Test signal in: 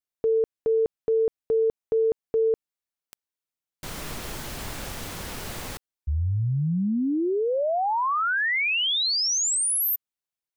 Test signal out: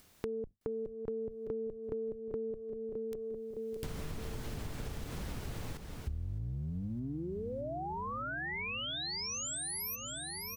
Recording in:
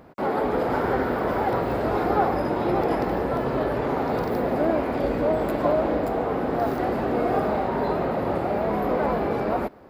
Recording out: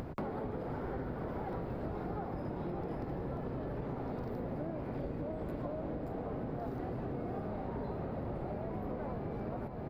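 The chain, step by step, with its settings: octave divider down 1 oct, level -3 dB; bass shelf 350 Hz +10 dB; upward compressor, threshold -30 dBFS; treble shelf 7 kHz -4 dB; feedback delay 613 ms, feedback 59%, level -12.5 dB; compression 10:1, threshold -31 dBFS; trim -5 dB

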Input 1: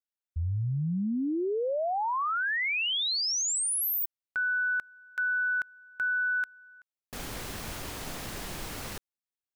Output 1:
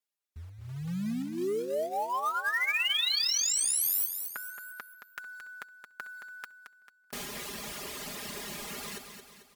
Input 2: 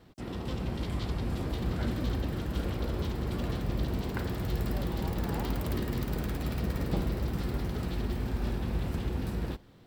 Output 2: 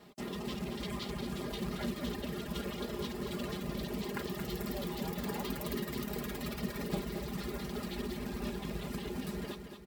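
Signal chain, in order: reverb removal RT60 1.6 s; high-pass 250 Hz 6 dB/octave; band-stop 1.5 kHz, Q 10; dynamic bell 790 Hz, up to -4 dB, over -52 dBFS, Q 1.6; comb 4.9 ms, depth 70%; in parallel at +0.5 dB: compression 5:1, threshold -41 dBFS; on the sum: short-mantissa float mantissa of 2-bit; on a send: feedback delay 222 ms, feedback 47%, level -8 dB; on the sum: trim -3 dB; MP3 112 kbps 48 kHz

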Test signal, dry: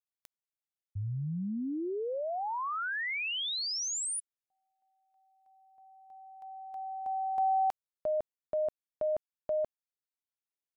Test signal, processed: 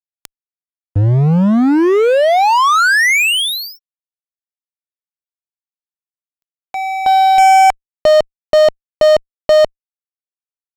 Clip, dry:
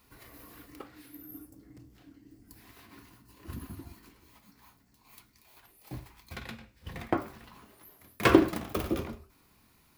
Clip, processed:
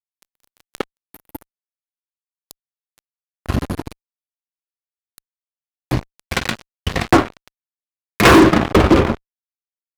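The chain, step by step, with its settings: low-pass that closes with the level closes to 2.3 kHz, closed at -30.5 dBFS; fuzz box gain 32 dB, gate -42 dBFS; trim +7.5 dB

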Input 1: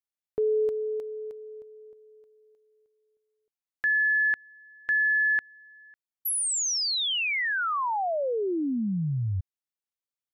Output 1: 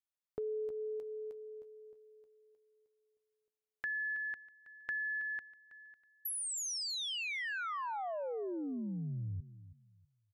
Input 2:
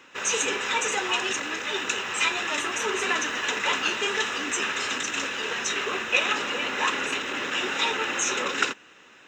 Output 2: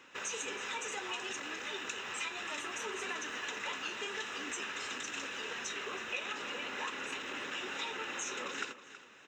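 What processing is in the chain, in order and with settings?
compression 2.5:1, threshold -34 dBFS; feedback delay 323 ms, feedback 26%, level -15 dB; trim -6 dB

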